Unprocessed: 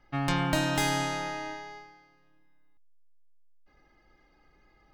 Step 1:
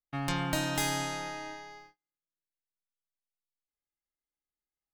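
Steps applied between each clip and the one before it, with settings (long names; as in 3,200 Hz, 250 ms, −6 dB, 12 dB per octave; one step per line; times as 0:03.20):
noise gate −50 dBFS, range −35 dB
high-shelf EQ 5,900 Hz +8 dB
level −4.5 dB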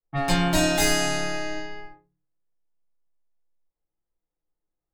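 convolution reverb RT60 0.35 s, pre-delay 6 ms, DRR −9.5 dB
low-pass that shuts in the quiet parts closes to 930 Hz, open at −22.5 dBFS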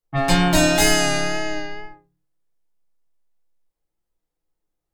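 tape wow and flutter 31 cents
level +5 dB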